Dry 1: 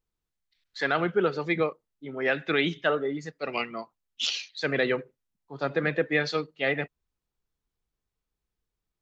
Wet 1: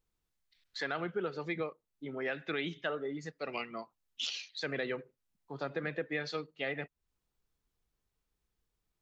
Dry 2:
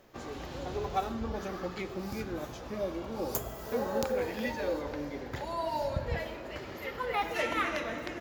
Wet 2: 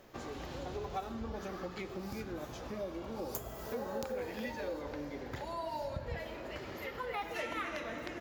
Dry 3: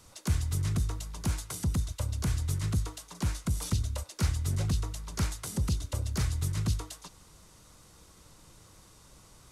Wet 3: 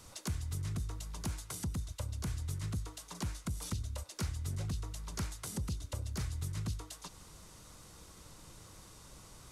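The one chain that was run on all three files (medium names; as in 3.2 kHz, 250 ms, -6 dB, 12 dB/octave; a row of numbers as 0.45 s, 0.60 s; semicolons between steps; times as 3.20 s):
compression 2:1, threshold -44 dBFS; trim +1.5 dB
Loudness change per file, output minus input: -10.0 LU, -6.0 LU, -8.0 LU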